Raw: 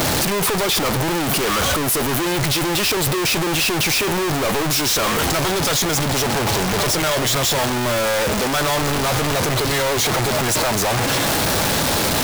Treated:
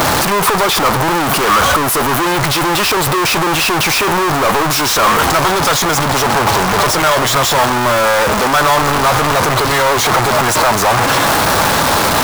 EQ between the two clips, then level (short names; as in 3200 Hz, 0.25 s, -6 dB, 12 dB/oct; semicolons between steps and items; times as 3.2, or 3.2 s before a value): bell 1100 Hz +9.5 dB 1.4 oct; +3.0 dB